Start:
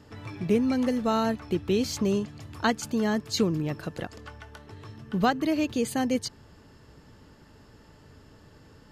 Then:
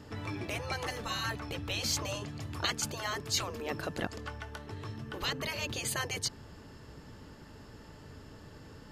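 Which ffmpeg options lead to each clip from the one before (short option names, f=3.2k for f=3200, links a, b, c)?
-af "afftfilt=real='re*lt(hypot(re,im),0.141)':imag='im*lt(hypot(re,im),0.141)':win_size=1024:overlap=0.75,volume=2.5dB"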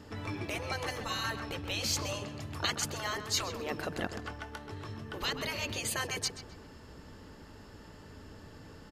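-filter_complex "[0:a]equalizer=f=130:w=6:g=-9,asplit=2[a][b];[b]adelay=130,lowpass=f=2.9k:p=1,volume=-9dB,asplit=2[c][d];[d]adelay=130,lowpass=f=2.9k:p=1,volume=0.48,asplit=2[e][f];[f]adelay=130,lowpass=f=2.9k:p=1,volume=0.48,asplit=2[g][h];[h]adelay=130,lowpass=f=2.9k:p=1,volume=0.48,asplit=2[i][j];[j]adelay=130,lowpass=f=2.9k:p=1,volume=0.48[k];[a][c][e][g][i][k]amix=inputs=6:normalize=0"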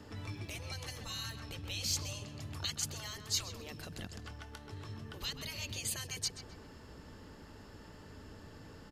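-filter_complex "[0:a]acrossover=split=180|3000[a][b][c];[b]acompressor=threshold=-48dB:ratio=6[d];[a][d][c]amix=inputs=3:normalize=0,volume=-1.5dB"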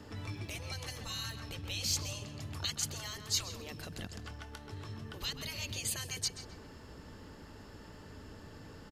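-af "aecho=1:1:168:0.0891,volume=1.5dB"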